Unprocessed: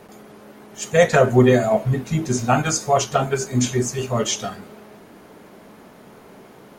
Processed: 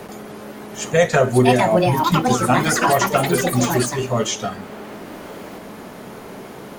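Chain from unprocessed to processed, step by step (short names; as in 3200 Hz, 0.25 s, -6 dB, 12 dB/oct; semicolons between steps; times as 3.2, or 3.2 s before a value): echoes that change speed 0.785 s, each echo +6 st, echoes 3; three-band squash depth 40%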